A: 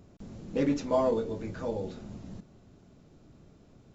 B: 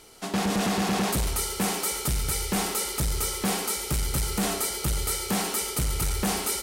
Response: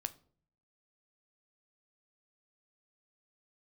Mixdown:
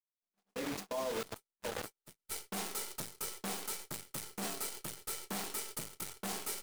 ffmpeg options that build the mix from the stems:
-filter_complex "[0:a]highpass=frequency=790:poles=1,acrusher=bits=5:mix=0:aa=0.000001,volume=-1.5dB,asplit=2[link_01][link_02];[link_02]volume=-14.5dB[link_03];[1:a]highpass=190,acrusher=bits=5:dc=4:mix=0:aa=0.000001,volume=-10dB,afade=type=in:start_time=1.91:duration=0.62:silence=0.251189,asplit=2[link_04][link_05];[link_05]volume=-14dB[link_06];[2:a]atrim=start_sample=2205[link_07];[link_03][link_06]amix=inputs=2:normalize=0[link_08];[link_08][link_07]afir=irnorm=-1:irlink=0[link_09];[link_01][link_04][link_09]amix=inputs=3:normalize=0,agate=range=-47dB:threshold=-40dB:ratio=16:detection=peak,alimiter=level_in=5.5dB:limit=-24dB:level=0:latency=1:release=57,volume=-5.5dB"

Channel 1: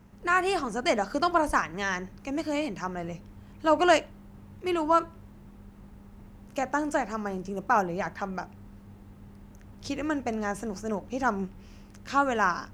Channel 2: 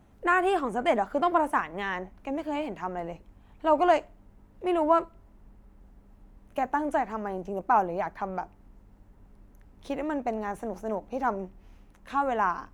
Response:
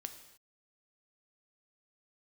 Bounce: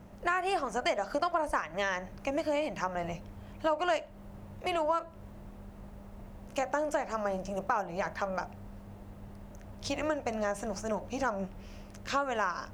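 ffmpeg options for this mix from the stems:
-filter_complex "[0:a]volume=1dB[link_01];[1:a]volume=-1,volume=-2.5dB[link_02];[link_01][link_02]amix=inputs=2:normalize=0,equalizer=frequency=610:width_type=o:width=0.56:gain=10.5,acompressor=threshold=-28dB:ratio=4"

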